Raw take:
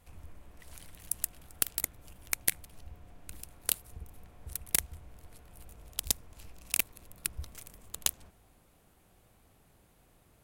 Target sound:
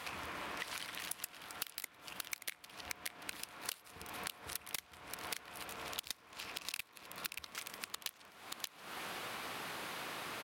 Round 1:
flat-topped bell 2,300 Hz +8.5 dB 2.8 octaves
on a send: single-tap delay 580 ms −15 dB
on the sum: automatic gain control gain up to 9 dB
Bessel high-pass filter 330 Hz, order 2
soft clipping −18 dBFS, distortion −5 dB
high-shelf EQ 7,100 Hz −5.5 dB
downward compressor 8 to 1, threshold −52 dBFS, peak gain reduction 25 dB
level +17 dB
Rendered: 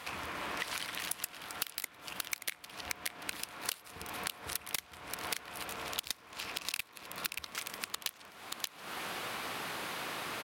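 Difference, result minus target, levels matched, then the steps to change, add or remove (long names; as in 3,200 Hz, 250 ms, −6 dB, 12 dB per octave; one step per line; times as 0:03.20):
downward compressor: peak gain reduction −5 dB
change: downward compressor 8 to 1, threshold −58 dBFS, peak gain reduction 30.5 dB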